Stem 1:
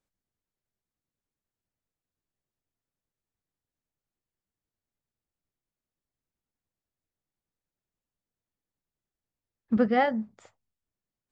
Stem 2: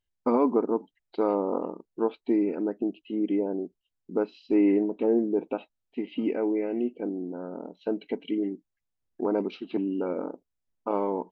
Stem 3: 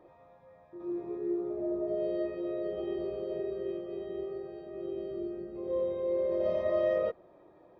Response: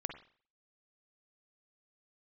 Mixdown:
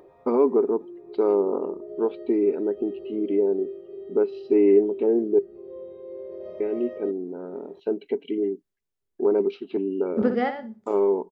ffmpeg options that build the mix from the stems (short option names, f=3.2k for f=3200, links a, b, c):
-filter_complex "[0:a]acrossover=split=380[a][b];[b]acompressor=threshold=-23dB:ratio=6[c];[a][c]amix=inputs=2:normalize=0,adelay=450,volume=-1.5dB,asplit=3[d][e][f];[e]volume=-19dB[g];[f]volume=-7.5dB[h];[1:a]volume=-2dB,asplit=3[i][j][k];[i]atrim=end=5.39,asetpts=PTS-STARTPTS,afade=t=out:st=5.386:d=0.004:c=hsin[l];[j]atrim=start=5.39:end=6.6,asetpts=PTS-STARTPTS,volume=0[m];[k]atrim=start=6.6,asetpts=PTS-STARTPTS,afade=t=in:d=0.004:c=hsin[n];[l][m][n]concat=n=3:v=0:a=1,asplit=2[o][p];[2:a]acompressor=mode=upward:threshold=-34dB:ratio=2.5,volume=-12.5dB,asplit=2[q][r];[r]volume=-12.5dB[s];[p]apad=whole_len=518629[t];[d][t]sidechaingate=range=-33dB:threshold=-57dB:ratio=16:detection=peak[u];[3:a]atrim=start_sample=2205[v];[g][s]amix=inputs=2:normalize=0[w];[w][v]afir=irnorm=-1:irlink=0[x];[h]aecho=0:1:62|124|186:1|0.2|0.04[y];[u][o][q][x][y]amix=inputs=5:normalize=0,equalizer=f=400:t=o:w=0.22:g=15"